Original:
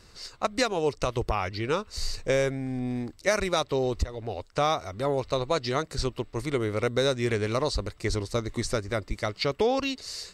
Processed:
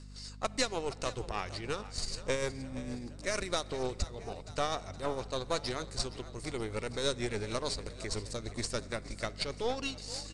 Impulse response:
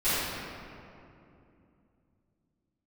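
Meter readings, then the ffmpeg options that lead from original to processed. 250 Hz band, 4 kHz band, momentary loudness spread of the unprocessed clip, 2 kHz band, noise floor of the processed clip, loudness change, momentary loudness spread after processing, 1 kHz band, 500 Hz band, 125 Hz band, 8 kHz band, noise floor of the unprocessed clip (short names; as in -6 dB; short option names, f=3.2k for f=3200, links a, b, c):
-9.0 dB, -4.0 dB, 7 LU, -7.0 dB, -47 dBFS, -8.0 dB, 7 LU, -8.5 dB, -9.5 dB, -9.5 dB, -2.0 dB, -55 dBFS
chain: -filter_complex "[0:a]highshelf=f=5k:g=11.5,bandreject=f=6k:w=23,tremolo=f=6.5:d=0.49,aeval=exprs='val(0)+0.01*(sin(2*PI*50*n/s)+sin(2*PI*2*50*n/s)/2+sin(2*PI*3*50*n/s)/3+sin(2*PI*4*50*n/s)/4+sin(2*PI*5*50*n/s)/5)':c=same,aeval=exprs='0.282*(cos(1*acos(clip(val(0)/0.282,-1,1)))-cos(1*PI/2))+0.0316*(cos(6*acos(clip(val(0)/0.282,-1,1)))-cos(6*PI/2))':c=same,asplit=6[a][b][c][d][e][f];[b]adelay=469,afreqshift=45,volume=-15.5dB[g];[c]adelay=938,afreqshift=90,volume=-21.2dB[h];[d]adelay=1407,afreqshift=135,volume=-26.9dB[i];[e]adelay=1876,afreqshift=180,volume=-32.5dB[j];[f]adelay=2345,afreqshift=225,volume=-38.2dB[k];[a][g][h][i][j][k]amix=inputs=6:normalize=0,asplit=2[l][m];[1:a]atrim=start_sample=2205,asetrate=35280,aresample=44100[n];[m][n]afir=irnorm=-1:irlink=0,volume=-34.5dB[o];[l][o]amix=inputs=2:normalize=0,aresample=22050,aresample=44100,volume=-7.5dB"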